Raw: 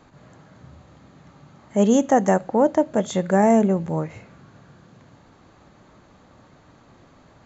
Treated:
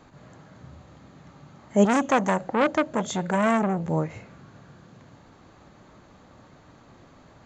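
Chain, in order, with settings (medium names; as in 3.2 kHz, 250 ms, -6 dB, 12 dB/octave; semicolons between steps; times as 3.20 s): 1.85–3.88 s: transformer saturation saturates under 1.4 kHz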